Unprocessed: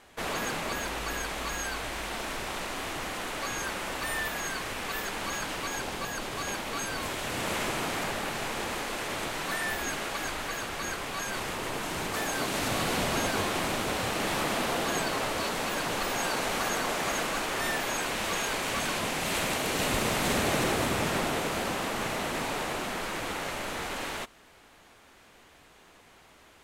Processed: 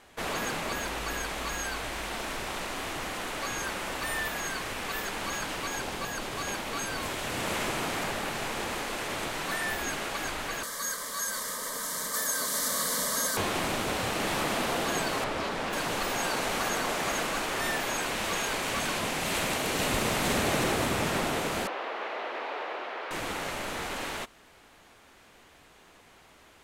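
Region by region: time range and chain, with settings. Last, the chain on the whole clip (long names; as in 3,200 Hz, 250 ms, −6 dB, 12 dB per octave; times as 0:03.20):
0:10.63–0:13.37: Butterworth band-reject 1,400 Hz, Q 7.6 + spectral tilt +3 dB per octave + phaser with its sweep stopped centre 520 Hz, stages 8
0:15.24–0:15.73: low-pass filter 3,200 Hz 6 dB per octave + highs frequency-modulated by the lows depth 0.29 ms
0:21.67–0:23.11: high-pass filter 400 Hz 24 dB per octave + high-frequency loss of the air 310 metres
whole clip: no processing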